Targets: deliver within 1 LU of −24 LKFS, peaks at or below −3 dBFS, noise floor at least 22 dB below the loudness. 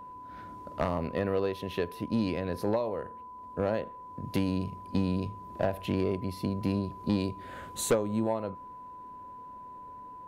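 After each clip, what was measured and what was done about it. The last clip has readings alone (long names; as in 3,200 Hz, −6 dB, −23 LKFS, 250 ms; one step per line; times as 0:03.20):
interfering tone 1,000 Hz; level of the tone −43 dBFS; integrated loudness −32.0 LKFS; sample peak −18.0 dBFS; target loudness −24.0 LKFS
→ notch filter 1,000 Hz, Q 30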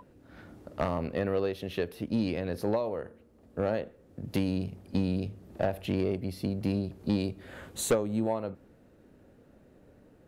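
interfering tone none found; integrated loudness −32.0 LKFS; sample peak −18.0 dBFS; target loudness −24.0 LKFS
→ level +8 dB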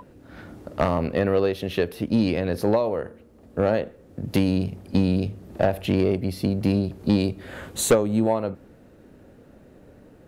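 integrated loudness −24.0 LKFS; sample peak −10.0 dBFS; background noise floor −51 dBFS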